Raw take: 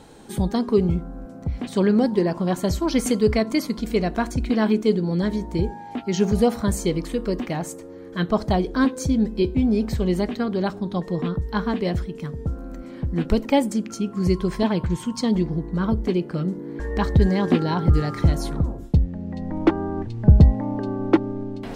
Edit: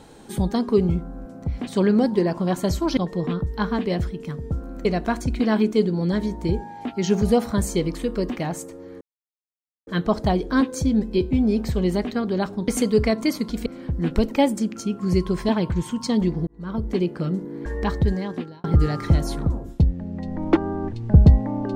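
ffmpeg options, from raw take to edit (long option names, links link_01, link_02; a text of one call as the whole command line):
ffmpeg -i in.wav -filter_complex "[0:a]asplit=8[link_01][link_02][link_03][link_04][link_05][link_06][link_07][link_08];[link_01]atrim=end=2.972[link_09];[link_02]atrim=start=10.918:end=12.802[link_10];[link_03]atrim=start=3.948:end=8.11,asetpts=PTS-STARTPTS,afade=type=out:start_time=4.158:duration=0.004:curve=hsin,apad=pad_dur=0.86[link_11];[link_04]atrim=start=8.11:end=10.922,asetpts=PTS-STARTPTS,afade=type=in:duration=0.004:curve=hsin[link_12];[link_05]atrim=start=2.968:end=3.952[link_13];[link_06]atrim=start=12.798:end=15.61,asetpts=PTS-STARTPTS,afade=type=out:start_time=2.808:duration=0.004:curve=hsin[link_14];[link_07]atrim=start=15.61:end=17.78,asetpts=PTS-STARTPTS,afade=type=in:duration=0.52,afade=type=out:start_time=1.26:duration=0.91[link_15];[link_08]atrim=start=17.78,asetpts=PTS-STARTPTS,afade=type=in:duration=0.004:curve=hsin[link_16];[link_09][link_10]acrossfade=duration=0.004:curve1=hsin:curve2=hsin[link_17];[link_11][link_12]concat=n=2:v=0:a=1[link_18];[link_17][link_18]acrossfade=duration=0.004:curve1=hsin:curve2=hsin[link_19];[link_19][link_13]acrossfade=duration=0.004:curve1=hsin:curve2=hsin[link_20];[link_14][link_15][link_16]concat=n=3:v=0:a=1[link_21];[link_20][link_21]acrossfade=duration=0.004:curve1=hsin:curve2=hsin" out.wav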